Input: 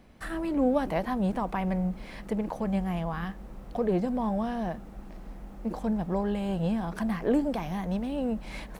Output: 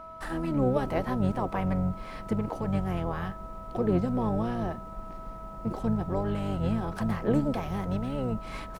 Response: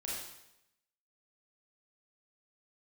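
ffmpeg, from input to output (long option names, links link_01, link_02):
-filter_complex "[0:a]aeval=exprs='val(0)+0.00794*sin(2*PI*1300*n/s)':channel_layout=same,asplit=3[link_01][link_02][link_03];[link_02]asetrate=22050,aresample=44100,atempo=2,volume=-4dB[link_04];[link_03]asetrate=33038,aresample=44100,atempo=1.33484,volume=-9dB[link_05];[link_01][link_04][link_05]amix=inputs=3:normalize=0,volume=-1.5dB"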